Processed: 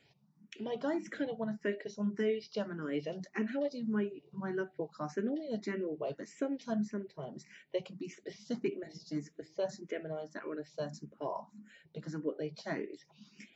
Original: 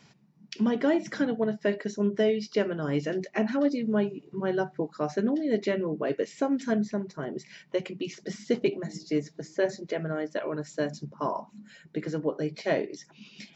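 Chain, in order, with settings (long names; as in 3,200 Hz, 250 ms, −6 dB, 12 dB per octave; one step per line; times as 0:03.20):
frequency shifter mixed with the dry sound +1.7 Hz
level −5.5 dB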